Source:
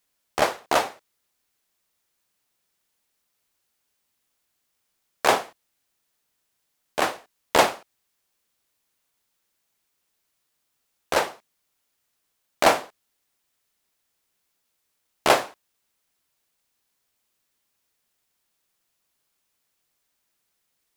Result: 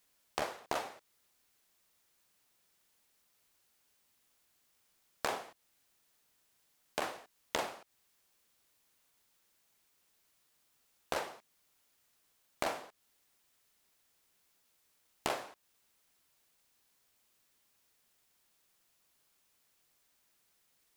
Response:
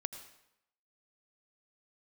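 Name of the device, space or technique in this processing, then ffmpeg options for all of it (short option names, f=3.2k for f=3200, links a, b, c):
serial compression, peaks first: -af "acompressor=threshold=-28dB:ratio=4,acompressor=threshold=-46dB:ratio=1.5,volume=1.5dB"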